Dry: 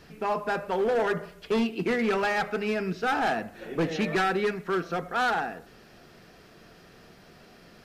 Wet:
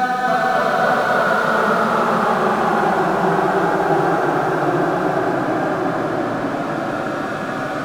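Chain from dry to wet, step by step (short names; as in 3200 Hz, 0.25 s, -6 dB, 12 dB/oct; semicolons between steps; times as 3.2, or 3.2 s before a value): HPF 51 Hz; high shelf 3100 Hz -12 dB; notch 2900 Hz, Q 5.2; on a send: split-band echo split 1300 Hz, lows 0.643 s, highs 0.348 s, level -4.5 dB; on the sum: crossover distortion -42.5 dBFS; Paulstretch 25×, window 0.10 s, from 5.23; echoes that change speed 0.277 s, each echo -2 st, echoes 3; gain +7 dB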